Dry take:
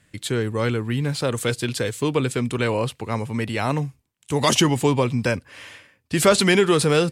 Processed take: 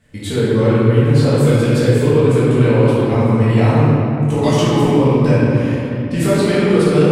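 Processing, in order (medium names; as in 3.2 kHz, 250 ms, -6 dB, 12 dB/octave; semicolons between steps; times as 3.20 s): compression, threshold -23 dBFS, peak gain reduction 12.5 dB; tilt shelf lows +4.5 dB; reverberation RT60 3.1 s, pre-delay 4 ms, DRR -11.5 dB; trim -1.5 dB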